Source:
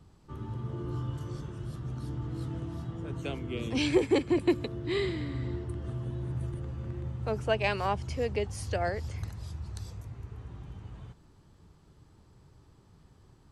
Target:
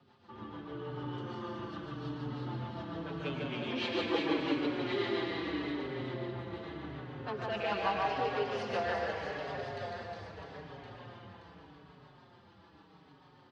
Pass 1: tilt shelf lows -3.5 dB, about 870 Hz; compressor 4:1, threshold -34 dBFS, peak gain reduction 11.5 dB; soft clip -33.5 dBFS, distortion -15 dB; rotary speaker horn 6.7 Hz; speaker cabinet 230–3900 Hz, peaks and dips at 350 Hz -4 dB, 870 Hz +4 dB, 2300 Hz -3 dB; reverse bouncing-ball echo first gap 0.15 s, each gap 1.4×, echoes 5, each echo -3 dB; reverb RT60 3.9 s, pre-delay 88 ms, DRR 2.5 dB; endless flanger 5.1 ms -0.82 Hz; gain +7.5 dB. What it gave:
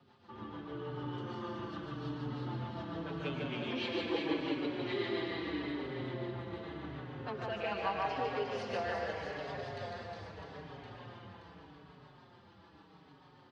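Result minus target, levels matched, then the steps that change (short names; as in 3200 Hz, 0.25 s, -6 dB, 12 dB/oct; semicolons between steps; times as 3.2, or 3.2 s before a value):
compressor: peak gain reduction +11.5 dB
remove: compressor 4:1, threshold -34 dBFS, peak gain reduction 11.5 dB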